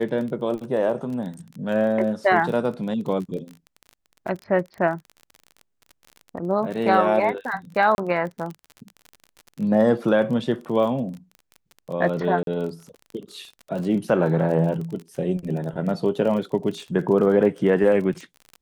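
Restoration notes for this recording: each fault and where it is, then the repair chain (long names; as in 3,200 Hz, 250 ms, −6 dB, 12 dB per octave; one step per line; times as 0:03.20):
surface crackle 32 per second −31 dBFS
0:07.95–0:07.98: drop-out 31 ms
0:12.43–0:12.47: drop-out 42 ms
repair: click removal
repair the gap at 0:07.95, 31 ms
repair the gap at 0:12.43, 42 ms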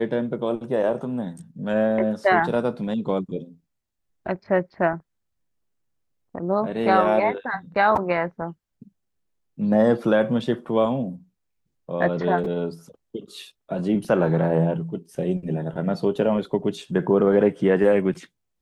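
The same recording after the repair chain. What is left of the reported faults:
none of them is left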